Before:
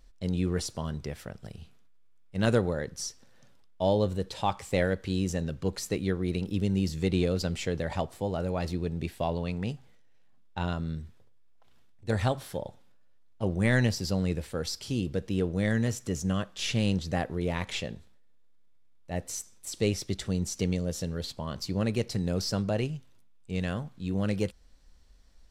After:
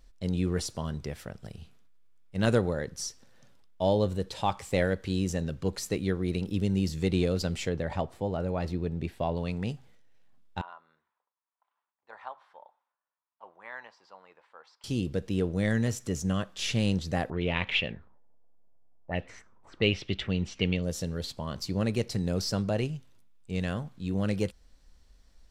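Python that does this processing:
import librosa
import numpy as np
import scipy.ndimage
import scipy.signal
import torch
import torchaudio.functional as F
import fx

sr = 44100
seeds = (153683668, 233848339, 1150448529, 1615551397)

y = fx.high_shelf(x, sr, hz=4100.0, db=-10.5, at=(7.69, 9.37))
y = fx.ladder_bandpass(y, sr, hz=1100.0, resonance_pct=60, at=(10.61, 14.84))
y = fx.envelope_lowpass(y, sr, base_hz=670.0, top_hz=2900.0, q=4.0, full_db=-29.5, direction='up', at=(17.3, 20.83))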